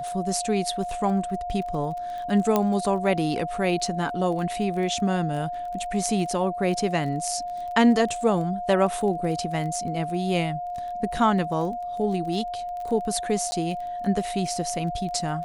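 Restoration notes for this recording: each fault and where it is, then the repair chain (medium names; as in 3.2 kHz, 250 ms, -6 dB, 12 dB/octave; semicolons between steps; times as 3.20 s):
crackle 20 per s -33 dBFS
whine 710 Hz -29 dBFS
2.56 s: pop -8 dBFS
13.51–13.52 s: dropout 10 ms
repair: de-click; band-stop 710 Hz, Q 30; interpolate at 13.51 s, 10 ms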